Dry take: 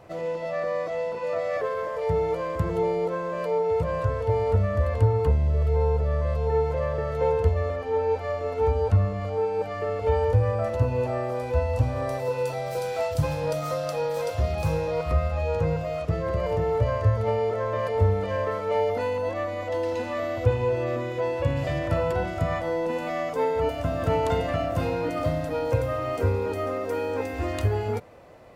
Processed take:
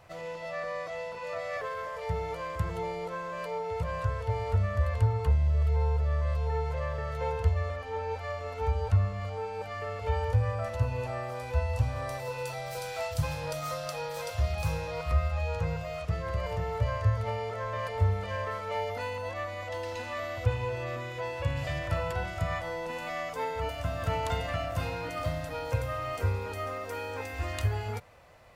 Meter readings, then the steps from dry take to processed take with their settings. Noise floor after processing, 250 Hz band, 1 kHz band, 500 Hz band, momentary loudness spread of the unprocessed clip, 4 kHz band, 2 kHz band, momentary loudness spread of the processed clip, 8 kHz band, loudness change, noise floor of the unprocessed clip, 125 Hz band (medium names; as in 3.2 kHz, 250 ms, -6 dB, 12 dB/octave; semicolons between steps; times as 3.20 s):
-39 dBFS, -10.0 dB, -4.5 dB, -10.0 dB, 5 LU, -0.5 dB, -1.5 dB, 8 LU, no reading, -6.0 dB, -33 dBFS, -4.0 dB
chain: peaking EQ 320 Hz -14 dB 2.2 oct